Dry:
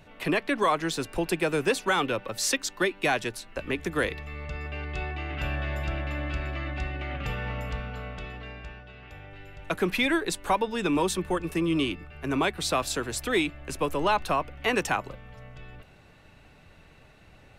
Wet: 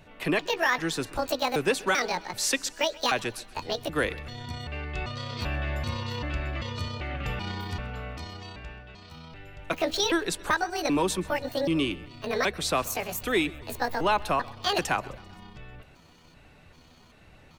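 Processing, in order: pitch shift switched off and on +8.5 st, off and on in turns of 389 ms; feedback delay 131 ms, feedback 51%, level -21.5 dB

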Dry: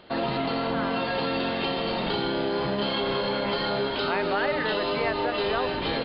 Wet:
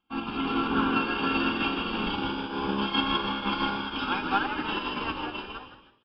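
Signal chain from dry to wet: fade out at the end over 0.86 s; static phaser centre 2.8 kHz, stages 8; comb 3.7 ms, depth 73%; on a send: frequency-shifting echo 160 ms, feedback 54%, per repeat +71 Hz, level -6 dB; on the sum: upward expansion 2.5:1, over -44 dBFS; trim +4 dB

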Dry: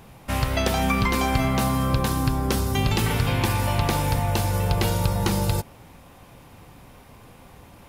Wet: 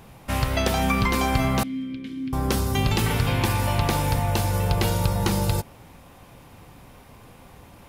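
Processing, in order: 1.63–2.33 s: vowel filter i

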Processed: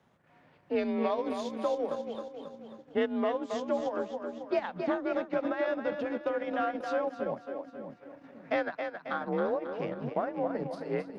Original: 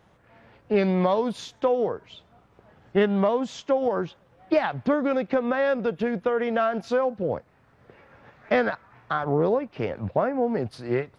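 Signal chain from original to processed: frequency shift +42 Hz; two-band feedback delay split 310 Hz, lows 573 ms, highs 270 ms, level -6 dB; transient shaper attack 0 dB, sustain -7 dB; trim -8 dB

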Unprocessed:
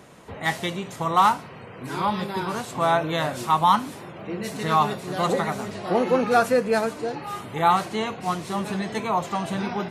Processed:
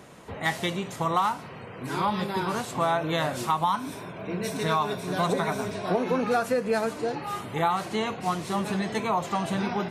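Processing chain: 3.72–6.20 s: rippled EQ curve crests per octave 1.6, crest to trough 7 dB; compression 6:1, threshold -21 dBFS, peak gain reduction 9 dB

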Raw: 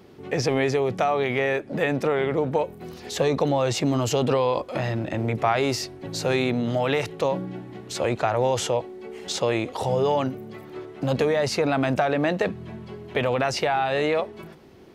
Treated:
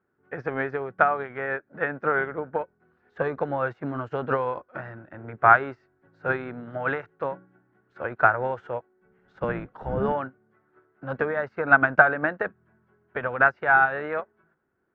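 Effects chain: 9.01–10.13 s: octave divider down 1 oct, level +3 dB; resonant low-pass 1.5 kHz, resonance Q 7.3; upward expansion 2.5:1, over -33 dBFS; trim +3 dB

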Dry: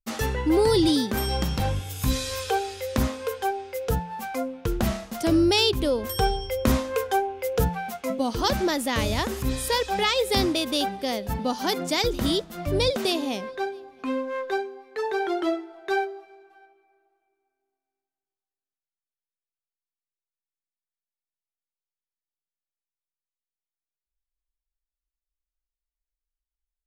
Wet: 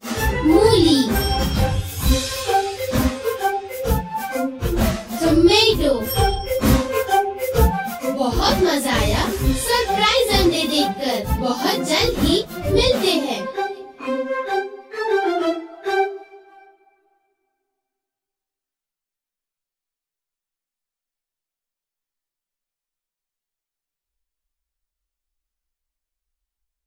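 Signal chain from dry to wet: phase randomisation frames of 100 ms; trim +6.5 dB

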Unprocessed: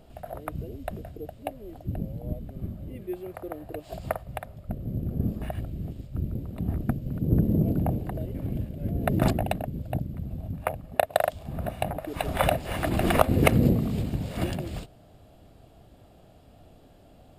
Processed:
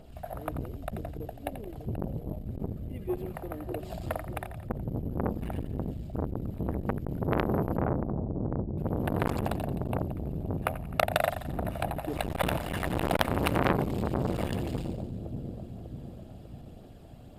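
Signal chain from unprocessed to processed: phaser 1.9 Hz, delay 1.3 ms, feedback 34%; 7.77–8.78 s: Chebyshev low-pass 850 Hz, order 3; two-band feedback delay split 600 Hz, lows 596 ms, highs 86 ms, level -9 dB; transformer saturation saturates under 2.3 kHz

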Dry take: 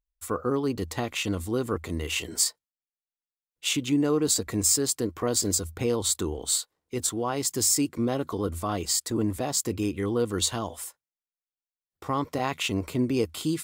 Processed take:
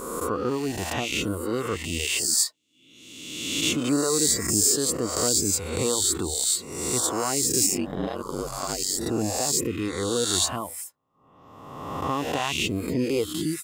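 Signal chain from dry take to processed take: reverse spectral sustain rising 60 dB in 1.53 s; reverb removal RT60 0.87 s; 7.66–9.00 s: ring modulator 47 Hz

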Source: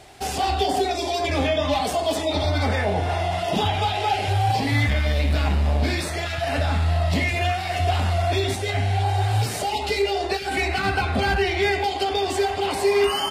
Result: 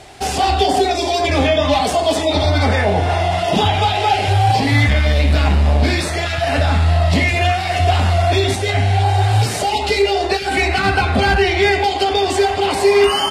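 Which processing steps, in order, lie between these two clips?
low-pass 11 kHz 12 dB/octave; trim +7 dB

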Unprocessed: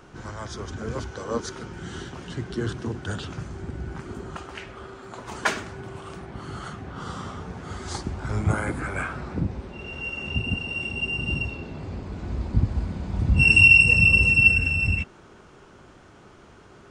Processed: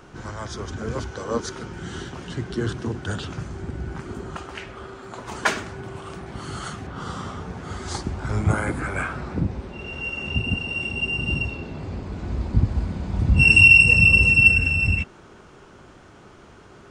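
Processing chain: 6.26–6.87 s: treble shelf 3.8 kHz +9.5 dB; in parallel at -10 dB: overload inside the chain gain 10.5 dB

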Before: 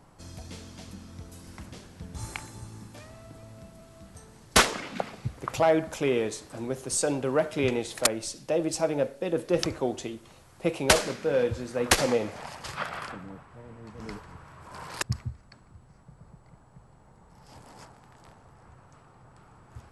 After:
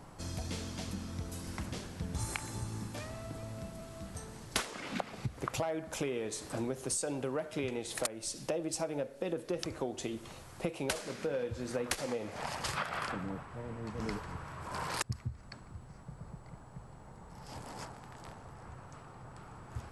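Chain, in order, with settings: dynamic bell 9.6 kHz, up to +4 dB, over -50 dBFS, Q 1.5; compression 12:1, threshold -36 dBFS, peak gain reduction 22.5 dB; trim +4 dB

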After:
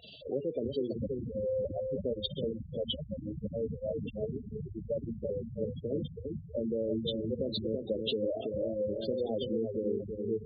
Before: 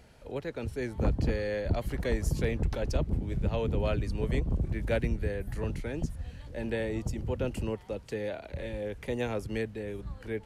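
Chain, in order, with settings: knee-point frequency compression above 1 kHz 1.5:1; resonant high shelf 2.4 kHz +11 dB, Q 3; hum notches 60/120/180/240/300/360/420/480 Hz; compression 10:1, threshold -34 dBFS, peak gain reduction 13.5 dB; feedback echo behind a low-pass 330 ms, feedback 50%, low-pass 2.1 kHz, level -4 dB; spectral gate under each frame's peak -10 dB strong; high-pass 180 Hz 12 dB/octave; trim +7.5 dB

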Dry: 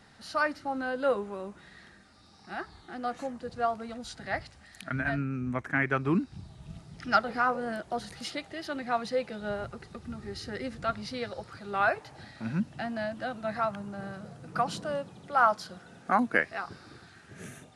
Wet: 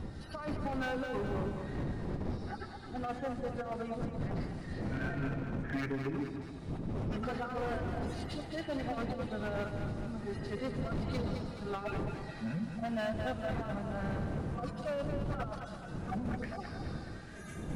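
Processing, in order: harmonic-percussive separation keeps harmonic; wind noise 140 Hz -31 dBFS; bass shelf 130 Hz -10.5 dB; hum notches 60/120/180/240 Hz; compressor with a negative ratio -33 dBFS, ratio -0.5; 6.36–8.15 s: phase dispersion highs, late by 53 ms, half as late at 430 Hz; overload inside the chain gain 32.5 dB; 4.39–5.28 s: doubling 34 ms -4.5 dB; two-band feedback delay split 530 Hz, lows 160 ms, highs 213 ms, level -6.5 dB

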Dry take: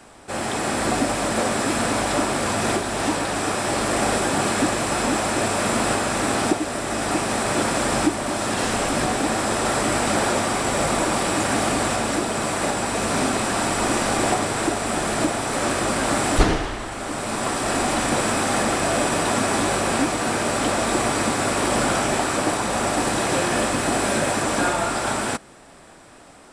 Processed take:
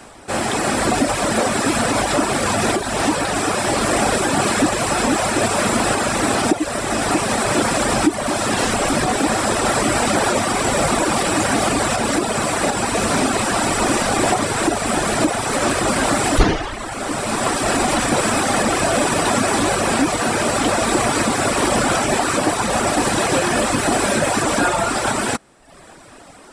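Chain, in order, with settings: in parallel at +1 dB: peak limiter -13 dBFS, peak gain reduction 9 dB; on the sum: reverb removal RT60 0.83 s

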